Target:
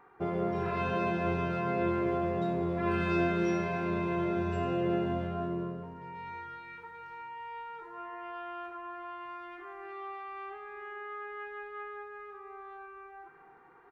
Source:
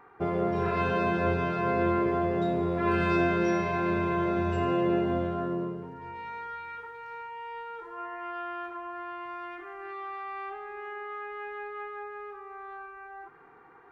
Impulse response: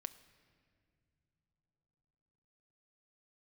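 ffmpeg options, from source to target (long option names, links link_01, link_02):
-filter_complex "[0:a]asplit=2[link_01][link_02];[link_02]adelay=280,highpass=300,lowpass=3400,asoftclip=type=hard:threshold=-23.5dB,volume=-12dB[link_03];[link_01][link_03]amix=inputs=2:normalize=0[link_04];[1:a]atrim=start_sample=2205[link_05];[link_04][link_05]afir=irnorm=-1:irlink=0"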